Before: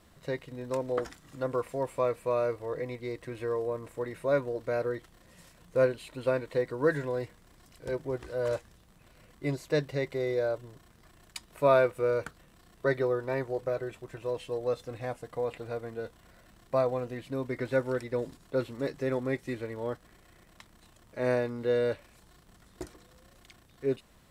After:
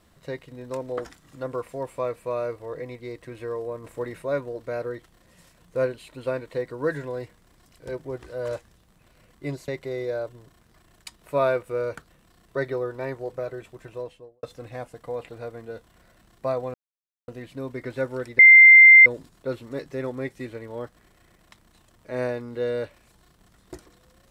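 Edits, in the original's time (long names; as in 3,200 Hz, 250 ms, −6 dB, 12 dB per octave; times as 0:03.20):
0:03.84–0:04.22: clip gain +3.5 dB
0:09.68–0:09.97: remove
0:14.17–0:14.72: fade out and dull
0:17.03: splice in silence 0.54 s
0:18.14: insert tone 2,090 Hz −6.5 dBFS 0.67 s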